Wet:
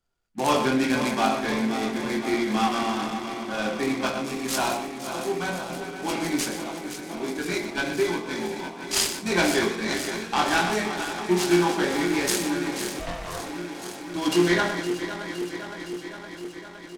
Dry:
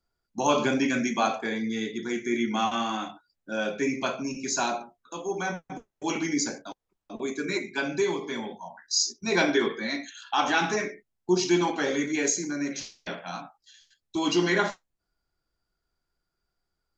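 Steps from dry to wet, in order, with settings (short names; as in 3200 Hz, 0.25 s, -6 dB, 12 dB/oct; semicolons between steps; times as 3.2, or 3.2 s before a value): regenerating reverse delay 0.257 s, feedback 84%, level -10 dB; 12.99–13.39 ring modulator 340 Hz; doubler 23 ms -5 dB; on a send: echo 0.123 s -11.5 dB; on the sum: noise-modulated delay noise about 1800 Hz, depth 0.037 ms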